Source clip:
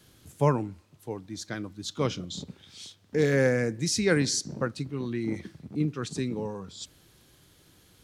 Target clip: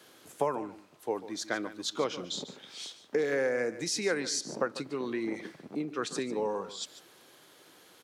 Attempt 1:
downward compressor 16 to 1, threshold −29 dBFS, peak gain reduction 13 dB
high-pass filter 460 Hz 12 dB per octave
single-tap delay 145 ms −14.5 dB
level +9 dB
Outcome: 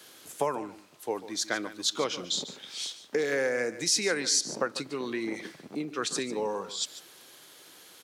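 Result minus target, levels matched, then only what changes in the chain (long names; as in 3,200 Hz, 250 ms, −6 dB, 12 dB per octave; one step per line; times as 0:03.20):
4,000 Hz band +3.5 dB
add after high-pass filter: high-shelf EQ 2,200 Hz −8.5 dB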